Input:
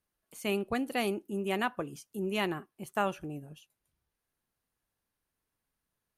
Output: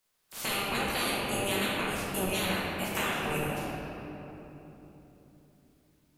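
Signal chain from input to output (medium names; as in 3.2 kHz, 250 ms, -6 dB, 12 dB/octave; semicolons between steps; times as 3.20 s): spectral peaks clipped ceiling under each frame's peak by 29 dB; compression 5:1, threshold -40 dBFS, peak gain reduction 13.5 dB; reverberation RT60 3.5 s, pre-delay 5 ms, DRR -7.5 dB; trim +5.5 dB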